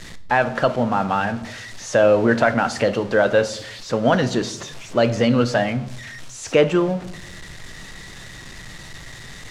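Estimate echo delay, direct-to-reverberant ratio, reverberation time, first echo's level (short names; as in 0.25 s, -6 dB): none, 11.0 dB, 0.80 s, none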